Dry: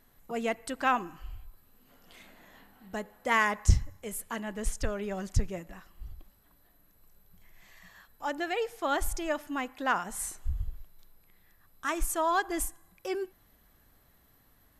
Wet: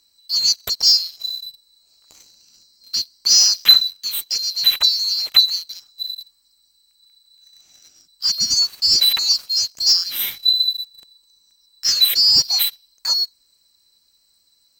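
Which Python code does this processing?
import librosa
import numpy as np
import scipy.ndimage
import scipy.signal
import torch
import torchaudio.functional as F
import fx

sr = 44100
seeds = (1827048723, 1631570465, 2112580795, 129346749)

y = fx.band_swap(x, sr, width_hz=4000)
y = fx.leveller(y, sr, passes=2)
y = fx.peak_eq(y, sr, hz=470.0, db=-12.0, octaves=0.38, at=(6.11, 8.67))
y = y * 10.0 ** (6.0 / 20.0)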